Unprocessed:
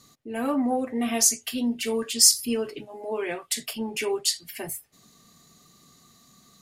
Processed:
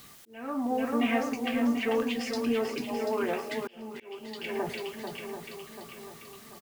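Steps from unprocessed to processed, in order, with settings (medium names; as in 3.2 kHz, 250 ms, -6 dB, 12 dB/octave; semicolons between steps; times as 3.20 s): LFO low-pass saw down 3 Hz 920–3200 Hz; in parallel at +2.5 dB: compression, threshold -34 dBFS, peak gain reduction 13 dB; on the sum: shuffle delay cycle 737 ms, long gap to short 1.5:1, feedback 44%, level -6.5 dB; word length cut 8-bit, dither triangular; on a send: delay 109 ms -16.5 dB; on the sum: slow attack 630 ms; trim -5 dB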